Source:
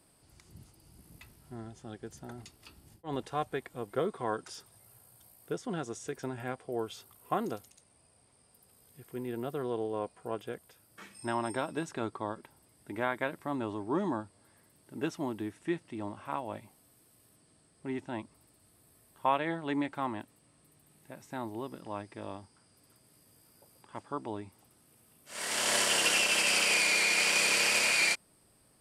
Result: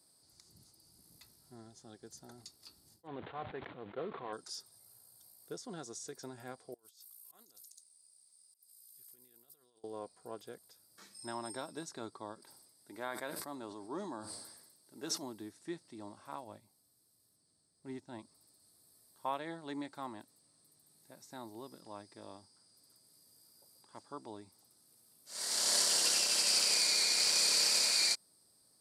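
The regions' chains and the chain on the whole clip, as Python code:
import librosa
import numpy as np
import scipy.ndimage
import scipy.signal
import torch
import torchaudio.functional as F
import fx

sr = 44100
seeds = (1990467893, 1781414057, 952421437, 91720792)

y = fx.chain(x, sr, fx.cvsd(bps=16000),
    fx.highpass(hz=61.0, slope=12),
    fx.sustainer(db_per_s=51.0), at=(3.07, 4.33))
y = fx.chain(y, sr, fx.pre_emphasis(coefficient=0.9),
    fx.auto_swell(attack_ms=179.0),
    fx.over_compress(threshold_db=-57.0, ratio=-0.5), at=(6.74, 9.84))
y = fx.chain(y, sr, fx.low_shelf(hz=180.0, db=-8.0),
    fx.echo_single(ms=73, db=-21.5),
    fx.sustainer(db_per_s=51.0), at=(12.39, 15.23))
y = fx.chain(y, sr, fx.low_shelf(hz=130.0, db=9.5),
    fx.upward_expand(threshold_db=-45.0, expansion=1.5), at=(16.44, 18.19))
y = fx.highpass(y, sr, hz=150.0, slope=6)
y = fx.high_shelf_res(y, sr, hz=3500.0, db=7.0, q=3.0)
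y = F.gain(torch.from_numpy(y), -8.5).numpy()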